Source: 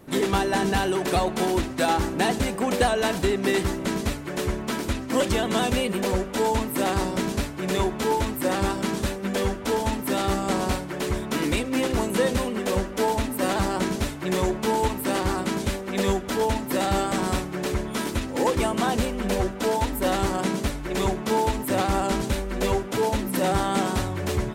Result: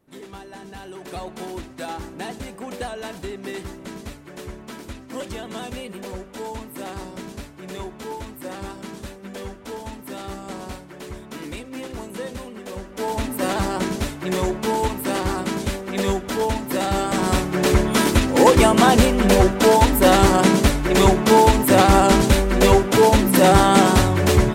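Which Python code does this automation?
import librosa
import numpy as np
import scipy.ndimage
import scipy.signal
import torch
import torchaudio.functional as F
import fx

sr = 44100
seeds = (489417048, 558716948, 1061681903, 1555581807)

y = fx.gain(x, sr, db=fx.line((0.68, -16.5), (1.26, -9.0), (12.78, -9.0), (13.24, 1.5), (16.97, 1.5), (17.72, 10.0)))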